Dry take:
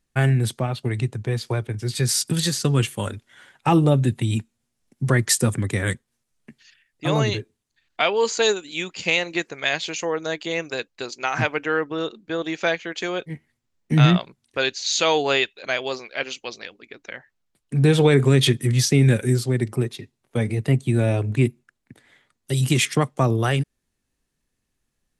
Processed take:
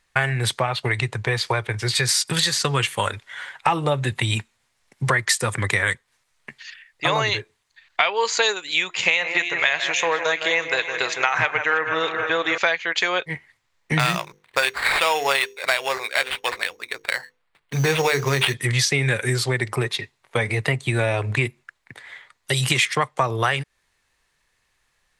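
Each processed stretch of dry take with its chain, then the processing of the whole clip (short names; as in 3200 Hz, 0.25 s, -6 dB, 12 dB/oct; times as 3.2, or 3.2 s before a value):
8.87–12.58 bell 4600 Hz -10.5 dB 0.23 oct + de-hum 348.4 Hz, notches 31 + echo with dull and thin repeats by turns 0.159 s, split 2200 Hz, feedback 72%, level -9.5 dB
13.99–18.54 high shelf 6400 Hz -9.5 dB + notches 50/100/150/200/250/300/350/400/450/500 Hz + sample-rate reducer 6100 Hz
whole clip: ten-band EQ 250 Hz -9 dB, 500 Hz +4 dB, 1000 Hz +10 dB, 2000 Hz +11 dB, 4000 Hz +7 dB, 8000 Hz +4 dB; compressor 4:1, threshold -21 dBFS; gain +2.5 dB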